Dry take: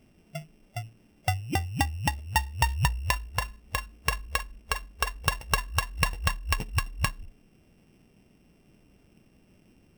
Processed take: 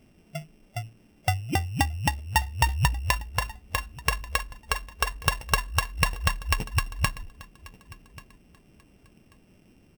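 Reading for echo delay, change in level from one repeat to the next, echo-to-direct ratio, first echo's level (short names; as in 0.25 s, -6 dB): 1.137 s, -13.5 dB, -21.0 dB, -21.0 dB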